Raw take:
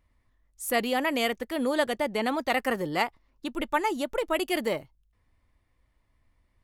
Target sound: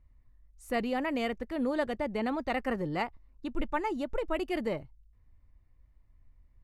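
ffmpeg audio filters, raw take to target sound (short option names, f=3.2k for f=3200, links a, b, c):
-af "aemphasis=mode=reproduction:type=bsi,bandreject=f=3.3k:w=11,volume=-6dB"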